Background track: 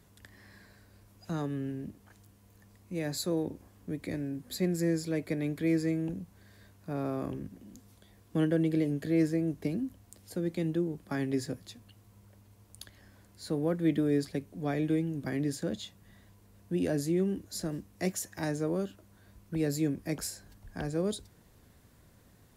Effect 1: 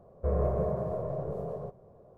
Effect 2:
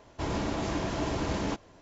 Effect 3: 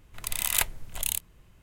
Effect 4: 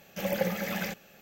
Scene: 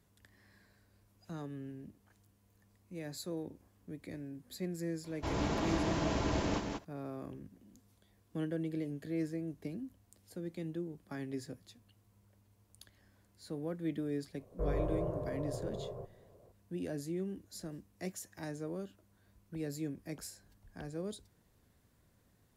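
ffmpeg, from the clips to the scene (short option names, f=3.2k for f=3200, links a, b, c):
-filter_complex "[0:a]volume=-9.5dB[a];[2:a]aecho=1:1:185:0.631[b];[1:a]afreqshift=-21[c];[b]atrim=end=1.81,asetpts=PTS-STARTPTS,volume=-4dB,afade=t=in:d=0.004:c=hsin,afade=t=out:st=1.806:d=0.004:c=hsin,adelay=5040[d];[c]atrim=end=2.17,asetpts=PTS-STARTPTS,volume=-6dB,afade=t=in:d=0.004:c=hsin,afade=t=out:st=2.166:d=0.004:c=hsin,adelay=14350[e];[a][d][e]amix=inputs=3:normalize=0"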